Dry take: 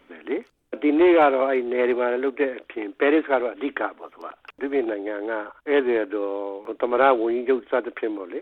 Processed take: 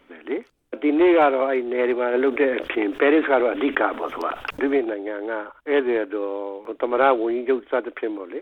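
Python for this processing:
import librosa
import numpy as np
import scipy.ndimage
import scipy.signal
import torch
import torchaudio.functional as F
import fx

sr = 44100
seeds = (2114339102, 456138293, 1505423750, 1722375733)

y = fx.env_flatten(x, sr, amount_pct=50, at=(2.13, 4.77), fade=0.02)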